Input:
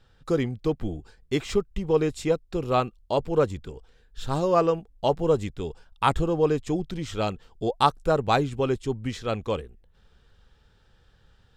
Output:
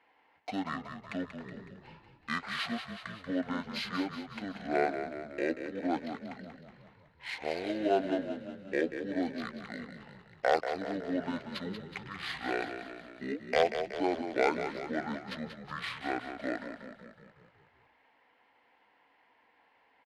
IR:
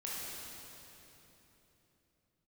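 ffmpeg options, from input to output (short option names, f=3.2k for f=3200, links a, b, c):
-filter_complex "[0:a]highpass=830,highshelf=f=3.5k:g=6,asplit=2[a][b];[b]acompressor=threshold=-37dB:ratio=6,volume=-0.5dB[c];[a][c]amix=inputs=2:normalize=0,aeval=exprs='0.335*(abs(mod(val(0)/0.335+3,4)-2)-1)':c=same,adynamicsmooth=sensitivity=7:basefreq=5.3k,asplit=8[d][e][f][g][h][i][j][k];[e]adelay=107,afreqshift=-48,volume=-8.5dB[l];[f]adelay=214,afreqshift=-96,volume=-13.2dB[m];[g]adelay=321,afreqshift=-144,volume=-18dB[n];[h]adelay=428,afreqshift=-192,volume=-22.7dB[o];[i]adelay=535,afreqshift=-240,volume=-27.4dB[p];[j]adelay=642,afreqshift=-288,volume=-32.2dB[q];[k]adelay=749,afreqshift=-336,volume=-36.9dB[r];[d][l][m][n][o][p][q][r]amix=inputs=8:normalize=0,asetrate=25442,aresample=44100,volume=-5dB"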